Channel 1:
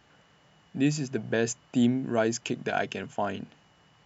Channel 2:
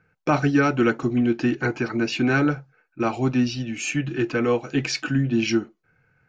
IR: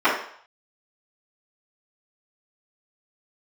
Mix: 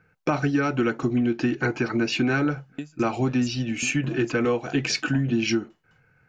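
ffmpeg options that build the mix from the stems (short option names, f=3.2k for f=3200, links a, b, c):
-filter_complex "[0:a]acompressor=threshold=-26dB:ratio=3,aeval=exprs='val(0)*pow(10,-35*if(lt(mod(4.8*n/s,1),2*abs(4.8)/1000),1-mod(4.8*n/s,1)/(2*abs(4.8)/1000),(mod(4.8*n/s,1)-2*abs(4.8)/1000)/(1-2*abs(4.8)/1000))/20)':c=same,adelay=1950,volume=-0.5dB[a];[1:a]acompressor=threshold=-21dB:ratio=6,volume=2dB[b];[a][b]amix=inputs=2:normalize=0"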